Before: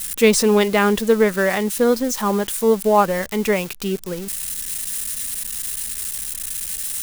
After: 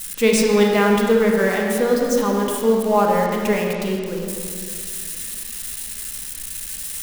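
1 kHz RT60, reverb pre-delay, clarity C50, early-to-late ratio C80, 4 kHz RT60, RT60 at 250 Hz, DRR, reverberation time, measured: 2.0 s, 27 ms, 1.0 dB, 2.0 dB, 1.5 s, 2.6 s, -0.5 dB, 2.2 s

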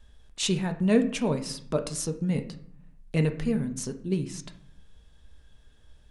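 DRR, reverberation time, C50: 6.0 dB, 0.60 s, 12.5 dB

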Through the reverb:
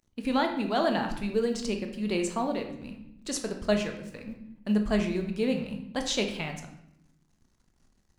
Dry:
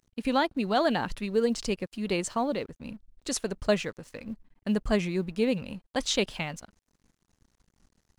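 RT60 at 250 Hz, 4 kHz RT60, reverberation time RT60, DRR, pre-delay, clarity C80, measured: 1.2 s, 0.60 s, 0.80 s, 4.0 dB, 3 ms, 10.5 dB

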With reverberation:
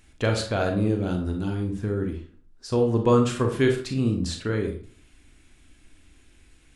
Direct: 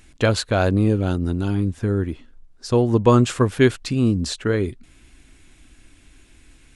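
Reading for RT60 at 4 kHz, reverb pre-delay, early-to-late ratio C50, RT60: 0.30 s, 27 ms, 7.0 dB, 0.45 s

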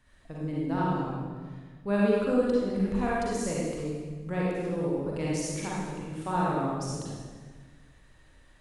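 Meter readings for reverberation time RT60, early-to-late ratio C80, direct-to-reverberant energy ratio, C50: 1.4 s, -0.5 dB, -6.0 dB, -4.0 dB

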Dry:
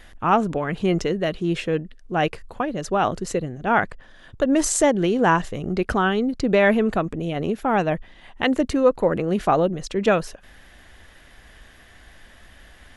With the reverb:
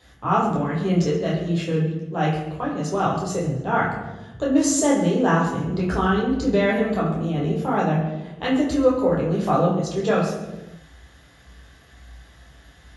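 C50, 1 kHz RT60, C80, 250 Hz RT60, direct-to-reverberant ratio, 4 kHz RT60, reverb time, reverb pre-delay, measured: 3.0 dB, 0.90 s, 6.0 dB, 1.5 s, -6.5 dB, 0.85 s, 1.1 s, 8 ms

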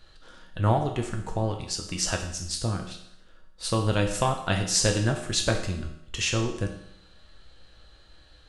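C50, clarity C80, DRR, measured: 7.5 dB, 10.0 dB, 2.0 dB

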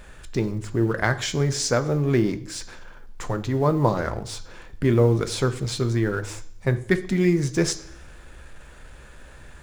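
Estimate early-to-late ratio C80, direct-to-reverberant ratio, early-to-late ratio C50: 18.5 dB, 9.5 dB, 15.5 dB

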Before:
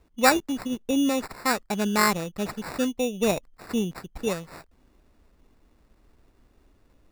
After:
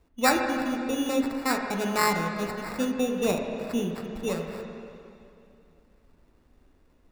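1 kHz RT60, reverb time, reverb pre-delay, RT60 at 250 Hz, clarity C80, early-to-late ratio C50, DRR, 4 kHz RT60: 2.6 s, 2.7 s, 7 ms, 2.9 s, 4.5 dB, 3.5 dB, 2.0 dB, 2.5 s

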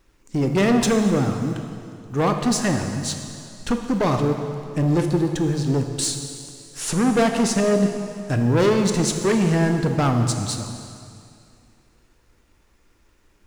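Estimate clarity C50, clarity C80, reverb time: 6.0 dB, 7.0 dB, 2.4 s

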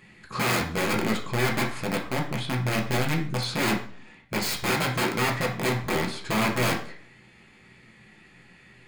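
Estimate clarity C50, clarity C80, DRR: 8.5 dB, 13.0 dB, -1.5 dB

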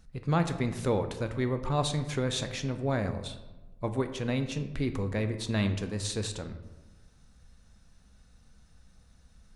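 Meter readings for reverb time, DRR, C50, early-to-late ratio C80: 1.1 s, 8.0 dB, 10.5 dB, 12.5 dB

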